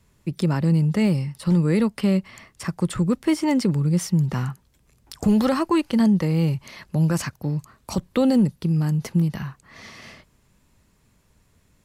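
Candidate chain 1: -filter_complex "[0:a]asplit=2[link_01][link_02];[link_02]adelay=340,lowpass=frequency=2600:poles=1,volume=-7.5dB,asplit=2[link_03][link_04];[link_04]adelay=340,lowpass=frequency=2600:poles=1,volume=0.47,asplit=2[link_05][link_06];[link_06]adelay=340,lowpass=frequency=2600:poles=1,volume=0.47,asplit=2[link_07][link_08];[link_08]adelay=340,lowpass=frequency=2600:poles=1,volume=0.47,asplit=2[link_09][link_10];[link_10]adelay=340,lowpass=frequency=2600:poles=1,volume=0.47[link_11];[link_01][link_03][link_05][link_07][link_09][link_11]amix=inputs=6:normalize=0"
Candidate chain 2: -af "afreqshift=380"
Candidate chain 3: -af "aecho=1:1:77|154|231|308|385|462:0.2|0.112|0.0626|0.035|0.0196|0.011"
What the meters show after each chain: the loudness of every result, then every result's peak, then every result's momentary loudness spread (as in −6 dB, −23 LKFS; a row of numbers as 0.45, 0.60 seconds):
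−21.5, −22.0, −22.0 LKFS; −8.5, −9.5, −10.0 dBFS; 11, 11, 12 LU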